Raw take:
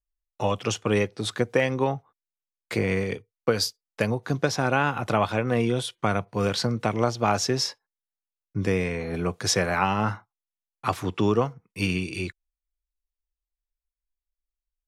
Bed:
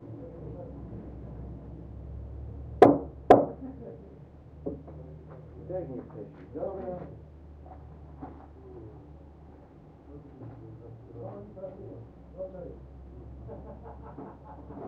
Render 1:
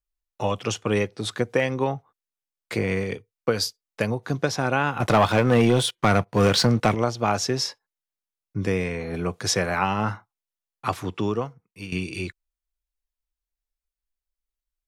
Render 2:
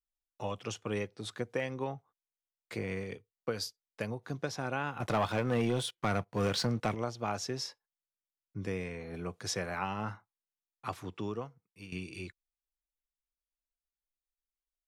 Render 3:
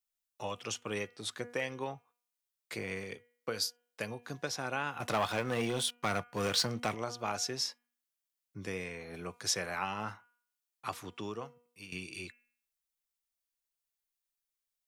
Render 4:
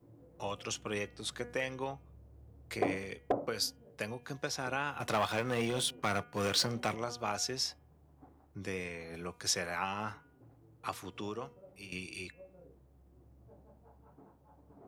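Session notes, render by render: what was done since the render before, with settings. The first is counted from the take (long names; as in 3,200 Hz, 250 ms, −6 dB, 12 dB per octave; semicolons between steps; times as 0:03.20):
0:05.00–0:06.95: leveller curve on the samples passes 2; 0:10.87–0:11.92: fade out, to −13 dB
level −12 dB
spectral tilt +2 dB per octave; hum removal 241.2 Hz, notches 13
mix in bed −15.5 dB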